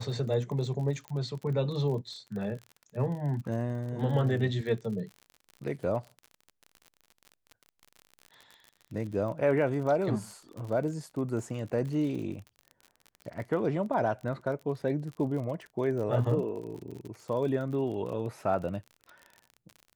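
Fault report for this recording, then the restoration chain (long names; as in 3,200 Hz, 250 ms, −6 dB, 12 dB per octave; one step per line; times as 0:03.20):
surface crackle 43 per second −38 dBFS
0:01.08: click −26 dBFS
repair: click removal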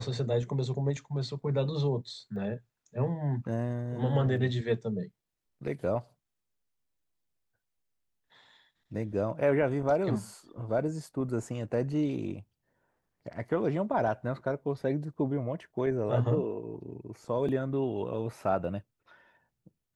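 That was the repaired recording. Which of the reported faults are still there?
none of them is left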